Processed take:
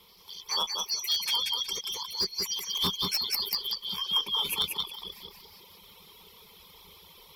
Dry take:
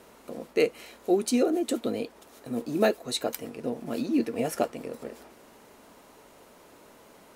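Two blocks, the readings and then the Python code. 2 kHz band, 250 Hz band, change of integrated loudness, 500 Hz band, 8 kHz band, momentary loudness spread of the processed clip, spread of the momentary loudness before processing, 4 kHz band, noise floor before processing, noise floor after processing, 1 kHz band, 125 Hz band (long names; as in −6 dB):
−2.5 dB, −19.0 dB, +0.5 dB, −19.5 dB, +4.0 dB, 13 LU, 16 LU, +14.5 dB, −55 dBFS, −55 dBFS, −2.5 dB, −5.0 dB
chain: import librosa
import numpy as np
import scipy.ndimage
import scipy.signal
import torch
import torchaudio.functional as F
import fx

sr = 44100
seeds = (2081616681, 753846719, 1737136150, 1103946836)

y = fx.band_shuffle(x, sr, order='2413')
y = fx.echo_pitch(y, sr, ms=85, semitones=5, count=2, db_per_echo=-6.0)
y = fx.ripple_eq(y, sr, per_octave=0.81, db=15)
y = fx.echo_feedback(y, sr, ms=183, feedback_pct=30, wet_db=-3.0)
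y = fx.rider(y, sr, range_db=4, speed_s=2.0)
y = 10.0 ** (-17.0 / 20.0) * (np.abs((y / 10.0 ** (-17.0 / 20.0) + 3.0) % 4.0 - 2.0) - 1.0)
y = fx.dereverb_blind(y, sr, rt60_s=1.0)
y = fx.peak_eq(y, sr, hz=6300.0, db=-12.5, octaves=0.32)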